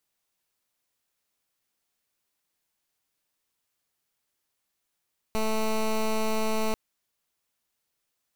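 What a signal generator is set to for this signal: pulse 219 Hz, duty 13% -25.5 dBFS 1.39 s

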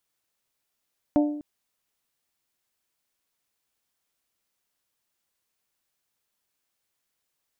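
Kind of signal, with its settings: glass hit bell, length 0.25 s, lowest mode 296 Hz, modes 4, decay 0.75 s, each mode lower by 6 dB, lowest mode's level -15.5 dB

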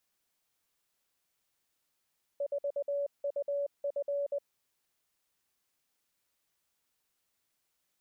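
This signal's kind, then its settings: Morse "4UF" 20 wpm 568 Hz -29.5 dBFS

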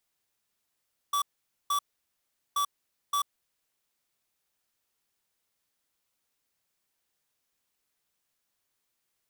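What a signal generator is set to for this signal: beep pattern square 1.15 kHz, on 0.09 s, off 0.48 s, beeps 2, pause 0.77 s, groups 2, -27 dBFS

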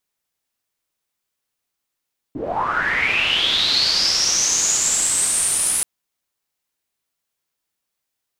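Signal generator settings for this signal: swept filtered noise white, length 3.48 s lowpass, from 250 Hz, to 10 kHz, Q 9.7, linear, gain ramp -7.5 dB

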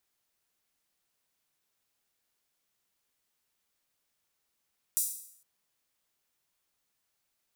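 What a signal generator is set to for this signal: open hi-hat length 0.46 s, high-pass 8.1 kHz, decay 0.66 s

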